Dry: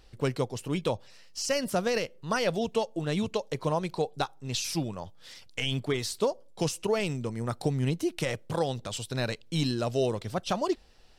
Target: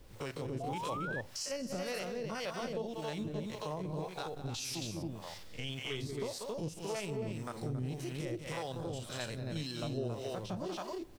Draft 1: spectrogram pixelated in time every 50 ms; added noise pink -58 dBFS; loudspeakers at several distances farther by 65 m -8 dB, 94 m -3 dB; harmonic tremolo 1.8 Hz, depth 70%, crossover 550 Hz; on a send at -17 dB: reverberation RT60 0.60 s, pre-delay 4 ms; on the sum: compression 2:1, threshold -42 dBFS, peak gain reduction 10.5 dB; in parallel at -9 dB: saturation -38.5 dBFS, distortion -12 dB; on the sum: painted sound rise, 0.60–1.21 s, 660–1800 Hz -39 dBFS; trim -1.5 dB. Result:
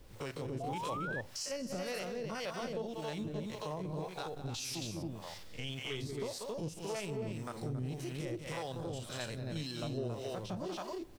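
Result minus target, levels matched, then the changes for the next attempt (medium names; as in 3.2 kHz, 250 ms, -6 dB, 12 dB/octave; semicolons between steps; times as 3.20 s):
saturation: distortion +15 dB
change: saturation -27.5 dBFS, distortion -26 dB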